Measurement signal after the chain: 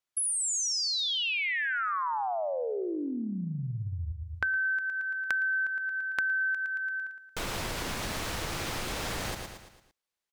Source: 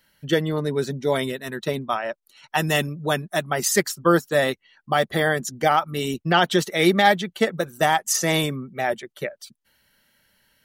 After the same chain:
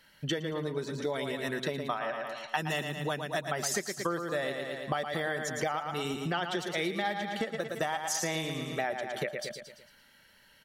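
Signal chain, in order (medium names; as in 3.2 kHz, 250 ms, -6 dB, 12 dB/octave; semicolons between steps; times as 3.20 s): treble shelf 10 kHz -11.5 dB; feedback delay 113 ms, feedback 47%, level -8 dB; compression 10:1, threshold -32 dBFS; bass shelf 400 Hz -4 dB; trim +4 dB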